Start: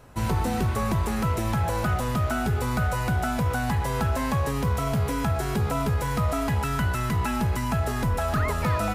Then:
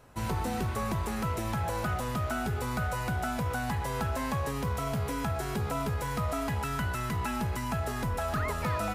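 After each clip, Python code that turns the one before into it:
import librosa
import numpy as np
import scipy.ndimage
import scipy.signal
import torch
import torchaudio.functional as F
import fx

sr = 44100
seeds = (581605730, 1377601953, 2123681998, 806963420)

y = fx.low_shelf(x, sr, hz=250.0, db=-3.5)
y = y * 10.0 ** (-4.5 / 20.0)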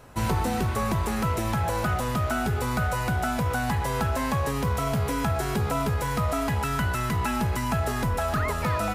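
y = fx.rider(x, sr, range_db=10, speed_s=0.5)
y = y * 10.0 ** (5.5 / 20.0)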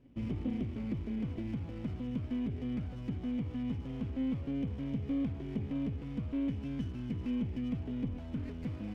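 y = fx.formant_cascade(x, sr, vowel='i')
y = fx.running_max(y, sr, window=17)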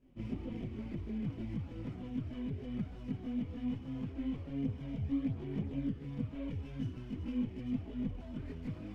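y = fx.chorus_voices(x, sr, voices=4, hz=0.67, base_ms=23, depth_ms=4.2, mix_pct=65)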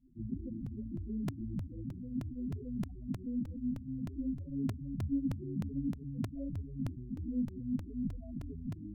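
y = fx.spec_topn(x, sr, count=8)
y = fx.buffer_crackle(y, sr, first_s=0.66, period_s=0.31, block=128, kind='repeat')
y = y * 10.0 ** (1.0 / 20.0)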